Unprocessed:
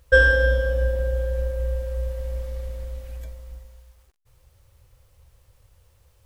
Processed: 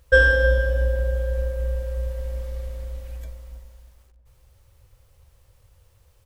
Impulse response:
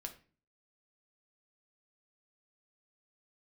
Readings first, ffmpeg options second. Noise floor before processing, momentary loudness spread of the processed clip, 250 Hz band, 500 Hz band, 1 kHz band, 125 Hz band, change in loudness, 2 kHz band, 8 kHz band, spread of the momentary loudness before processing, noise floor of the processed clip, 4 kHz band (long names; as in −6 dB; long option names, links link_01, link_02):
−60 dBFS, 21 LU, −0.5 dB, 0.0 dB, 0.0 dB, +0.5 dB, +0.5 dB, 0.0 dB, 0.0 dB, 21 LU, −59 dBFS, 0.0 dB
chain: -filter_complex "[0:a]asplit=2[link_01][link_02];[link_02]adelay=318,lowpass=frequency=970:poles=1,volume=-10.5dB,asplit=2[link_03][link_04];[link_04]adelay=318,lowpass=frequency=970:poles=1,volume=0.47,asplit=2[link_05][link_06];[link_06]adelay=318,lowpass=frequency=970:poles=1,volume=0.47,asplit=2[link_07][link_08];[link_08]adelay=318,lowpass=frequency=970:poles=1,volume=0.47,asplit=2[link_09][link_10];[link_10]adelay=318,lowpass=frequency=970:poles=1,volume=0.47[link_11];[link_01][link_03][link_05][link_07][link_09][link_11]amix=inputs=6:normalize=0"